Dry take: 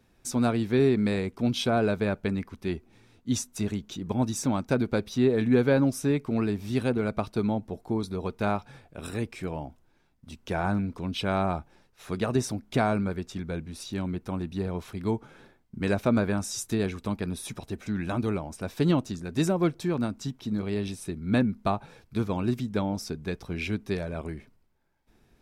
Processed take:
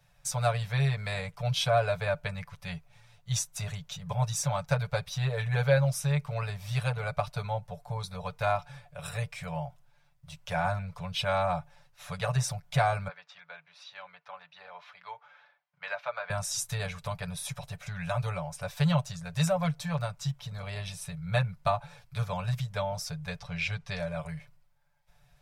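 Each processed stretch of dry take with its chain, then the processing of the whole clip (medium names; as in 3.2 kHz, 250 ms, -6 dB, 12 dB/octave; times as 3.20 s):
13.08–16.30 s: high-pass 930 Hz + distance through air 260 m
23.39–24.00 s: low-pass 5.5 kHz + treble shelf 4 kHz +5.5 dB
whole clip: Chebyshev band-stop 160–550 Hz, order 3; comb 6.9 ms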